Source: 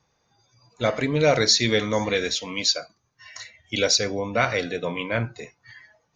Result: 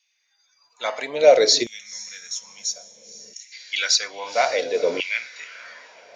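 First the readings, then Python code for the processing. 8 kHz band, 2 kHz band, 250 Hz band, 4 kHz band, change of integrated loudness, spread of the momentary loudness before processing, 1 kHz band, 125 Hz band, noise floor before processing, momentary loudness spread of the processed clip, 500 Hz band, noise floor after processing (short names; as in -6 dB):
+1.5 dB, -0.5 dB, -9.0 dB, 0.0 dB, +1.5 dB, 18 LU, +2.0 dB, under -20 dB, -71 dBFS, 22 LU, +3.5 dB, -69 dBFS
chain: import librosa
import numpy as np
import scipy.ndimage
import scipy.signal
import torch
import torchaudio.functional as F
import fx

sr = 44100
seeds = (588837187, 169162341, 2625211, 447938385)

p1 = fx.octave_divider(x, sr, octaves=1, level_db=-5.0)
p2 = fx.peak_eq(p1, sr, hz=1200.0, db=-8.5, octaves=1.3)
p3 = p2 + fx.echo_diffused(p2, sr, ms=492, feedback_pct=44, wet_db=-13.5, dry=0)
p4 = fx.spec_box(p3, sr, start_s=1.63, length_s=1.89, low_hz=220.0, high_hz=5200.0, gain_db=-18)
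p5 = fx.filter_lfo_highpass(p4, sr, shape='saw_down', hz=0.6, low_hz=370.0, high_hz=2700.0, q=3.0)
y = p5 * librosa.db_to_amplitude(1.5)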